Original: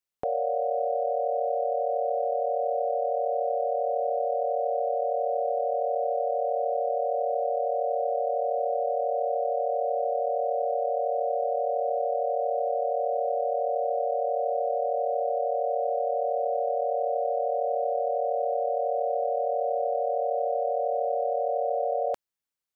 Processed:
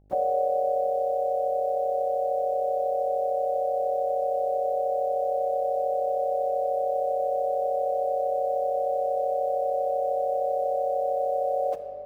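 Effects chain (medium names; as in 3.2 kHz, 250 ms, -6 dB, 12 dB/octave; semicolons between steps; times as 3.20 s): band-stop 670 Hz, Q 12; in parallel at +0.5 dB: peak limiter -28 dBFS, peak gain reduction 10 dB; on the sum: gain riding 2 s; plain phase-vocoder stretch 0.53×; small resonant body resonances 200/320 Hz, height 7 dB, ringing for 50 ms; bit crusher 10-bit; mains buzz 50 Hz, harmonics 16, -58 dBFS -7 dB/octave; on a send at -7 dB: reverberation RT60 3.1 s, pre-delay 3 ms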